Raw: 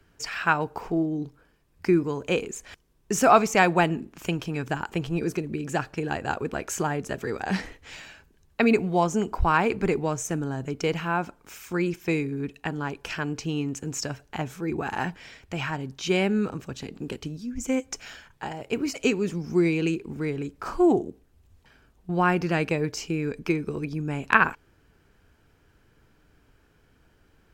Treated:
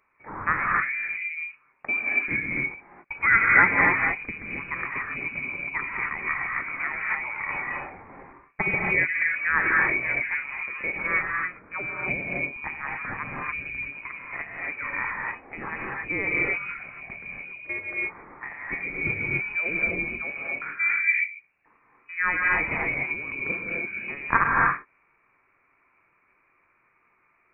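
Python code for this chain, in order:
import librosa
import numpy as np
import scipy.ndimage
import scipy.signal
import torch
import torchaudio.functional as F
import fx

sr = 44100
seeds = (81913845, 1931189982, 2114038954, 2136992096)

y = scipy.signal.sosfilt(scipy.signal.butter(2, 410.0, 'highpass', fs=sr, output='sos'), x)
y = fx.rev_gated(y, sr, seeds[0], gate_ms=310, shape='rising', drr_db=-3.0)
y = fx.freq_invert(y, sr, carrier_hz=2700)
y = y * librosa.db_to_amplitude(-2.5)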